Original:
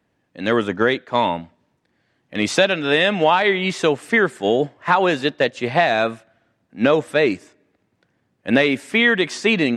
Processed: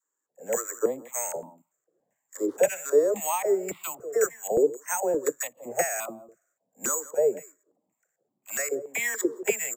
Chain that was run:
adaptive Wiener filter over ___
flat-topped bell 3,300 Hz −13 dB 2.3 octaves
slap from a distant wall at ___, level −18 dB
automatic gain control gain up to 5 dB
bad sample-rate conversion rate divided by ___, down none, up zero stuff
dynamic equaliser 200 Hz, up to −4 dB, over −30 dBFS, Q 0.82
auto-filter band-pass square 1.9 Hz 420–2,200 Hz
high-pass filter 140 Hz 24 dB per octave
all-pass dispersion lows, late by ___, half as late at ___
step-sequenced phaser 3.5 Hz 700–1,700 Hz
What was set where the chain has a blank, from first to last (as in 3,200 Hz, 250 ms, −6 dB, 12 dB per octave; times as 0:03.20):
9 samples, 29 metres, 6×, 47 ms, 580 Hz